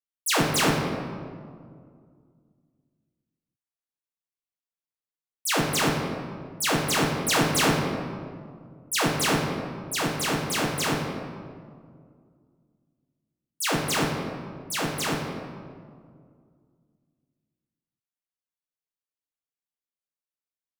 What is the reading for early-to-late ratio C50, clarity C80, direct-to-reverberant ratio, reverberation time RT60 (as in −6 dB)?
2.0 dB, 4.0 dB, −2.5 dB, 2.1 s